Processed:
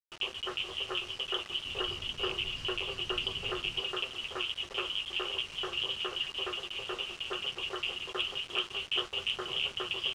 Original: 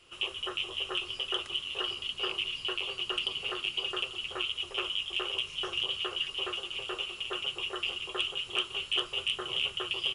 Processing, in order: 1.65–3.81 low shelf 230 Hz +12 dB; bit-crush 7-bit; air absorption 96 m

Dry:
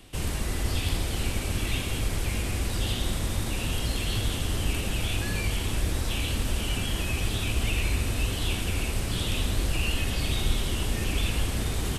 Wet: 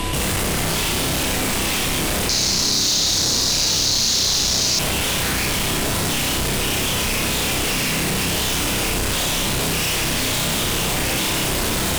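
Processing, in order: sine folder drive 19 dB, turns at -12 dBFS; flutter echo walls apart 5.3 m, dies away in 0.56 s; whine 1000 Hz -32 dBFS; soft clip -18.5 dBFS, distortion -8 dB; 2.29–4.79 band shelf 5100 Hz +15.5 dB 1 oct; fast leveller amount 70%; gain -7 dB

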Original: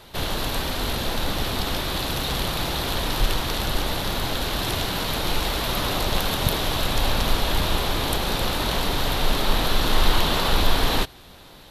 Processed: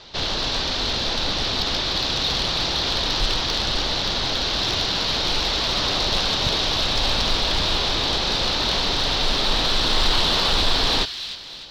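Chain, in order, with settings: steep low-pass 5300 Hz 36 dB/oct; tone controls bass -3 dB, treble +15 dB; in parallel at -4 dB: overloaded stage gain 17.5 dB; on the sum: thin delay 0.301 s, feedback 44%, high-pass 2200 Hz, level -9 dB; gain -4 dB

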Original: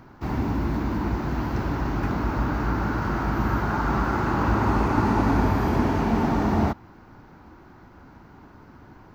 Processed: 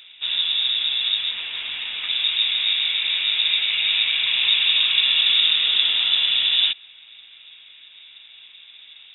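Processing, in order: 1.31–2.09 low shelf 300 Hz -10.5 dB; inverted band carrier 3700 Hz; gain +2 dB

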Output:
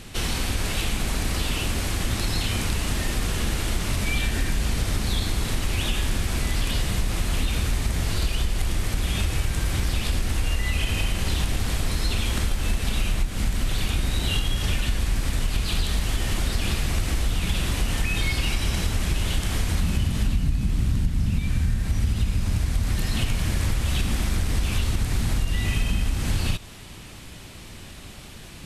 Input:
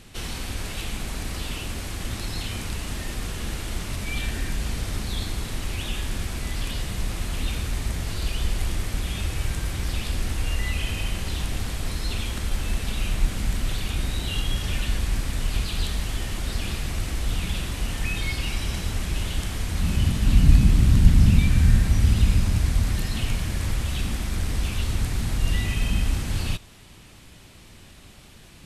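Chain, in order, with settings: compressor 10:1, threshold -25 dBFS, peak gain reduction 18.5 dB; gain +6.5 dB

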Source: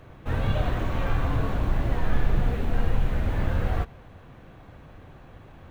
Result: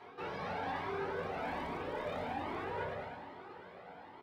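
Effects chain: Doppler pass-by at 1.91, 25 m/s, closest 15 m; short-mantissa float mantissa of 4-bit; LPF 1300 Hz 6 dB/oct; vocal rider within 3 dB; HPF 340 Hz 12 dB/oct; reverb RT60 0.50 s, pre-delay 3 ms, DRR -1.5 dB; speed mistake 33 rpm record played at 45 rpm; feedback echo 0.107 s, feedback 55%, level -10 dB; reverse; compressor 4:1, threshold -47 dBFS, peak gain reduction 14.5 dB; reverse; cascading flanger rising 1.2 Hz; gain +13 dB

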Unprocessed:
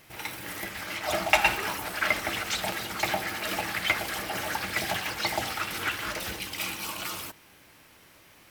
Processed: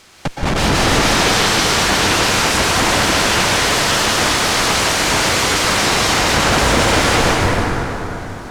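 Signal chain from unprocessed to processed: HPF 150 Hz 12 dB/oct; spectral gate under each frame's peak -20 dB weak; high shelf 5100 Hz +8.5 dB; AGC gain up to 15.5 dB; Schmitt trigger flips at -27 dBFS; requantised 8-bit, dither triangular; air absorption 74 m; plate-style reverb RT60 4 s, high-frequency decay 0.5×, pre-delay 0.11 s, DRR -4 dB; gain +7.5 dB

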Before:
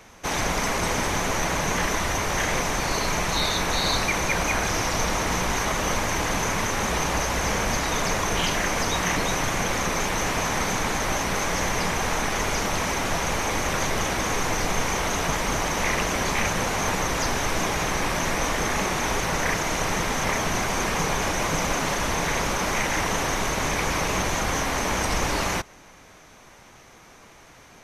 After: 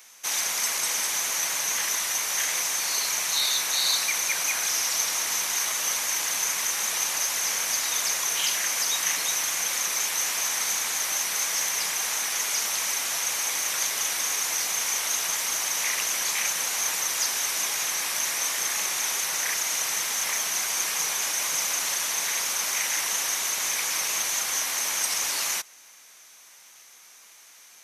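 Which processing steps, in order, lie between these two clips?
differentiator; gain +7 dB

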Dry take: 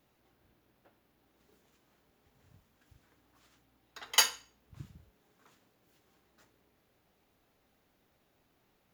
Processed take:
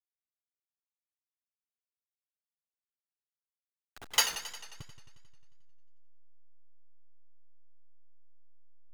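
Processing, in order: level-crossing sampler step -38.5 dBFS; warbling echo 89 ms, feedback 69%, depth 100 cents, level -12 dB; gain -1.5 dB

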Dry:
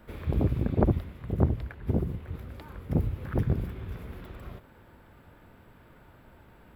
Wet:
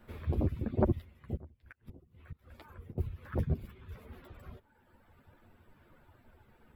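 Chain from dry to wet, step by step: reverb removal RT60 1.5 s; 1.35–2.98 flipped gate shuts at -29 dBFS, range -24 dB; chorus voices 6, 1 Hz, delay 11 ms, depth 3 ms; gain -1.5 dB

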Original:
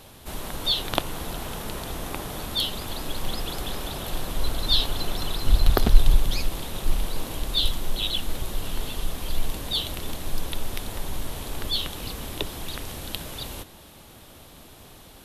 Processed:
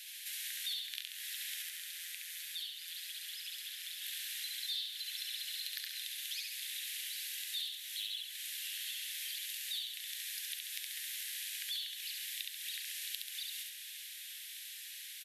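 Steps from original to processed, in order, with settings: steep high-pass 1700 Hz 72 dB/oct; compressor 5:1, threshold -44 dBFS, peak gain reduction 22.5 dB; 1.62–4.02 AM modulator 170 Hz, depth 55%; feedback echo 68 ms, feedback 51%, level -3 dB; gain +2.5 dB

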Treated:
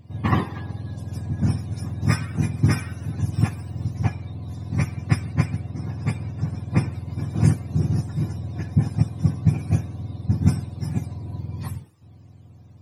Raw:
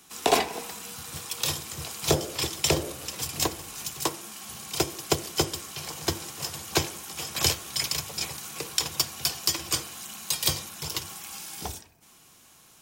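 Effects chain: spectrum mirrored in octaves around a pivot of 890 Hz; 5.33–6.92 high shelf 6700 Hz -10.5 dB

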